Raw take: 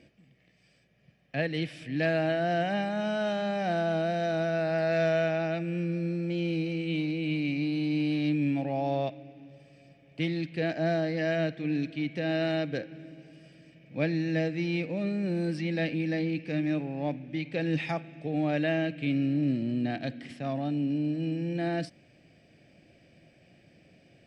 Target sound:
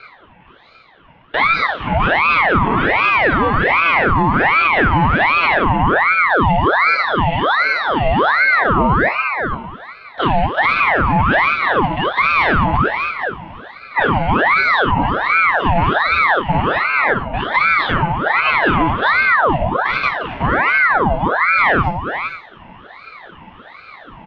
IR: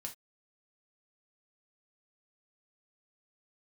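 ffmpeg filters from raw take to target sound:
-filter_complex "[0:a]bandreject=frequency=700:width=12,asplit=2[link_01][link_02];[link_02]acompressor=threshold=-37dB:ratio=6,volume=2.5dB[link_03];[link_01][link_03]amix=inputs=2:normalize=0,afreqshift=15,highpass=390,equalizer=frequency=510:width_type=q:width=4:gain=8,equalizer=frequency=1100:width_type=q:width=4:gain=10,equalizer=frequency=1600:width_type=q:width=4:gain=-9,lowpass=frequency=2200:width=0.5412,lowpass=frequency=2200:width=1.3066,asplit=2[link_04][link_05];[link_05]adelay=17,volume=-13dB[link_06];[link_04][link_06]amix=inputs=2:normalize=0,aecho=1:1:460:0.282[link_07];[1:a]atrim=start_sample=2205,asetrate=23814,aresample=44100[link_08];[link_07][link_08]afir=irnorm=-1:irlink=0,aeval=exprs='0.266*(cos(1*acos(clip(val(0)/0.266,-1,1)))-cos(1*PI/2))+0.0188*(cos(3*acos(clip(val(0)/0.266,-1,1)))-cos(3*PI/2))':channel_layout=same,alimiter=level_in=22dB:limit=-1dB:release=50:level=0:latency=1,aeval=exprs='val(0)*sin(2*PI*1100*n/s+1100*0.7/1.3*sin(2*PI*1.3*n/s))':channel_layout=same,volume=-3dB"

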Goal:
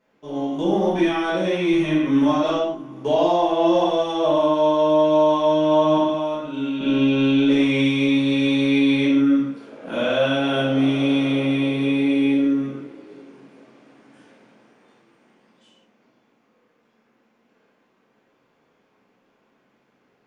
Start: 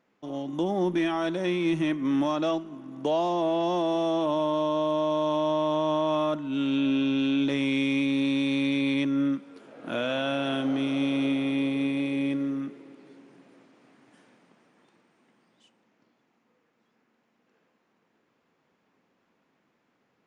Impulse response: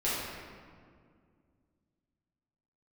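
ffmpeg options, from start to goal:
-filter_complex "[0:a]asettb=1/sr,asplit=3[link_01][link_02][link_03];[link_01]atrim=end=5.974[link_04];[link_02]atrim=start=5.97:end=6.81,asetpts=PTS-STARTPTS,afade=type=in:duration=0.004:curve=qsin,afade=type=out:start_time=0.836:duration=0.004:curve=qsin,acrossover=split=220|1800[link_05][link_06][link_07];[link_05]acompressor=threshold=-47dB:ratio=4[link_08];[link_06]acompressor=threshold=-33dB:ratio=4[link_09];[link_07]acompressor=threshold=-46dB:ratio=4[link_10];[link_08][link_09][link_10]amix=inputs=3:normalize=0[link_11];[link_03]atrim=start=6.806[link_12];[link_04][link_11]acrossfade=duration=0.004:curve1=hsin:curve2=qsin[link_13];[link_13][link_12]acrossfade=duration=0.004:curve1=qsin:curve2=hsin[link_14];[1:a]atrim=start_sample=2205,afade=type=out:start_time=0.28:duration=0.01,atrim=end_sample=12789,asetrate=52920,aresample=44100[link_15];[link_14][link_15]afir=irnorm=-1:irlink=0"

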